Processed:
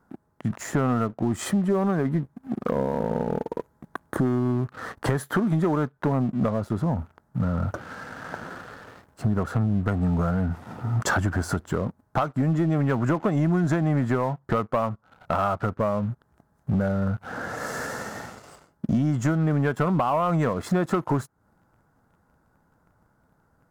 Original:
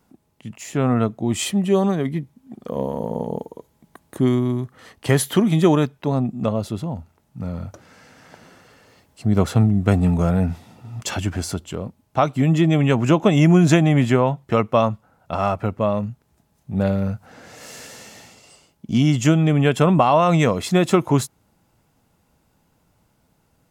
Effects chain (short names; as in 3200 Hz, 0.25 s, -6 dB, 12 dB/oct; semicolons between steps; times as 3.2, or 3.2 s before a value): resonant high shelf 2000 Hz -9.5 dB, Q 3; compressor 8:1, threshold -29 dBFS, peak gain reduction 19 dB; sample leveller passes 2; gain +2 dB